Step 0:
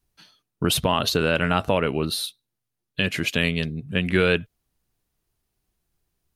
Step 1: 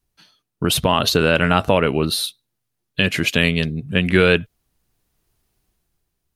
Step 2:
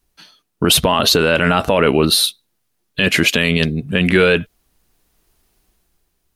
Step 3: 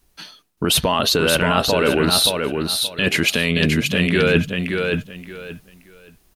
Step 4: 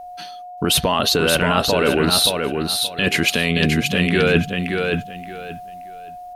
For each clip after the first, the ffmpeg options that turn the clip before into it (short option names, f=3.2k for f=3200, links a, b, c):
-af "dynaudnorm=f=130:g=11:m=8.5dB"
-af "equalizer=f=110:t=o:w=1:g=-8.5,alimiter=limit=-10.5dB:level=0:latency=1:release=14,volume=8dB"
-af "areverse,acompressor=threshold=-21dB:ratio=6,areverse,aecho=1:1:575|1150|1725:0.596|0.137|0.0315,volume=6dB"
-af "aeval=exprs='val(0)+0.0224*sin(2*PI*720*n/s)':c=same"